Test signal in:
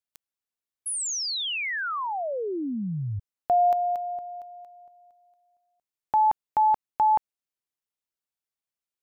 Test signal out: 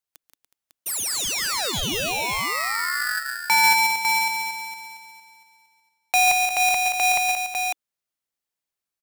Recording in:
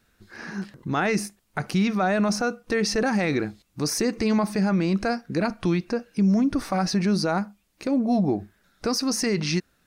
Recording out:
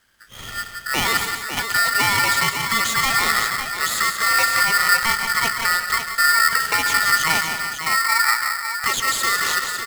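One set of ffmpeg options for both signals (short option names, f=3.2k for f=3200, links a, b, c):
-filter_complex "[0:a]bandreject=f=1.9k:w=28,asplit=2[a][b];[b]aecho=0:1:140|177|288|368|551:0.266|0.422|0.2|0.158|0.422[c];[a][c]amix=inputs=2:normalize=0,aeval=exprs='val(0)*sgn(sin(2*PI*1600*n/s))':c=same,volume=2.5dB"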